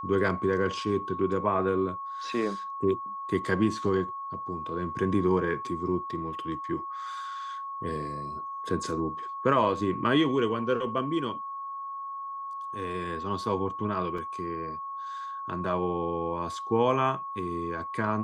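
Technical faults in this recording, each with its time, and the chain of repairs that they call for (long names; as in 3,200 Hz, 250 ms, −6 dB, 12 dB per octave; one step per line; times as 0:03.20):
whistle 1,100 Hz −34 dBFS
0:14.18: drop-out 3.9 ms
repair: notch filter 1,100 Hz, Q 30
repair the gap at 0:14.18, 3.9 ms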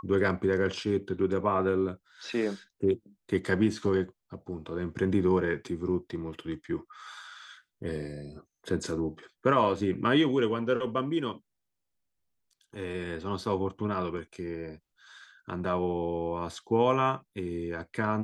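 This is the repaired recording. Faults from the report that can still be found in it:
none of them is left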